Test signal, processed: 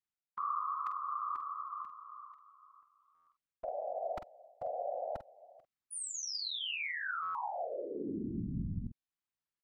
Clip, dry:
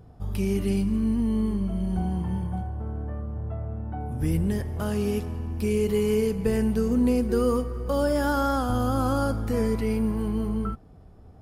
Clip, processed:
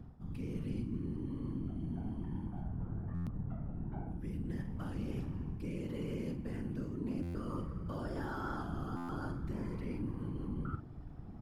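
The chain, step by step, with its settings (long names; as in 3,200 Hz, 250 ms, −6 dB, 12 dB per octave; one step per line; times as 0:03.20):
low-pass filter 1,900 Hz 6 dB per octave
parametric band 510 Hz −13 dB 0.92 octaves
reversed playback
downward compressor 5 to 1, threshold −41 dBFS
reversed playback
random phases in short frames
double-tracking delay 47 ms −10 dB
buffer that repeats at 0:03.14/0:07.22/0:08.96, samples 512, times 10
level +2.5 dB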